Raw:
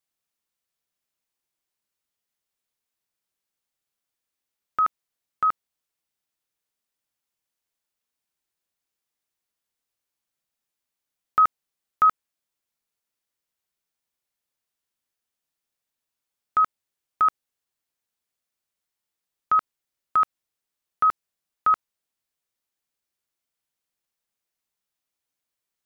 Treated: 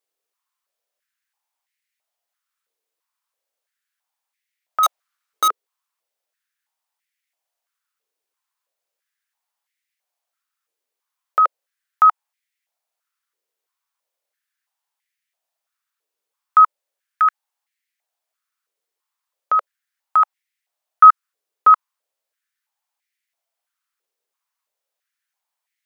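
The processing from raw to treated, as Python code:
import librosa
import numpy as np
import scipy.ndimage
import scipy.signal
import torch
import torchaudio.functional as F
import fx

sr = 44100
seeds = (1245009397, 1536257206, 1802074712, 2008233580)

y = fx.halfwave_hold(x, sr, at=(4.83, 5.48))
y = fx.filter_held_highpass(y, sr, hz=3.0, low_hz=440.0, high_hz=2000.0)
y = F.gain(torch.from_numpy(y), 1.0).numpy()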